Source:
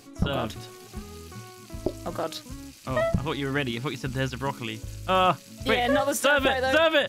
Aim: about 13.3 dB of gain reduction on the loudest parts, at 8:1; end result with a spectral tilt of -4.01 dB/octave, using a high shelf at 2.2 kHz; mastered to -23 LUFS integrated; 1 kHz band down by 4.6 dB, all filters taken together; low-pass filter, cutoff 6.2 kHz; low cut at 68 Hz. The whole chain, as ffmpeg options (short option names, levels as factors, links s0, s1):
-af "highpass=68,lowpass=6200,equalizer=f=1000:t=o:g=-8.5,highshelf=f=2200:g=6.5,acompressor=threshold=0.0251:ratio=8,volume=5.01"